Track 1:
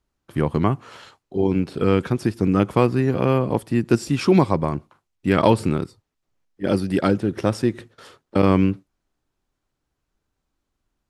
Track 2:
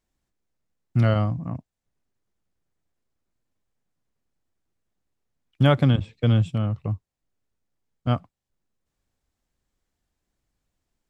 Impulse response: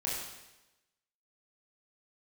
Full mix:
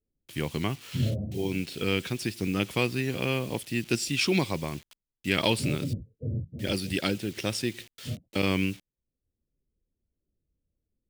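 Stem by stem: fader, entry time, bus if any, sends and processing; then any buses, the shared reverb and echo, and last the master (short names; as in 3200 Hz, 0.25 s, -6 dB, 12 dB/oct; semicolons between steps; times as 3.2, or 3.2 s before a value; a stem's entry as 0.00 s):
-10.0 dB, 0.00 s, no send, bit-crush 8-bit
-1.5 dB, 0.00 s, no send, phase scrambler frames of 50 ms; steep low-pass 550 Hz 36 dB/oct; auto duck -11 dB, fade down 1.90 s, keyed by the first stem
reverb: off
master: resonant high shelf 1800 Hz +12.5 dB, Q 1.5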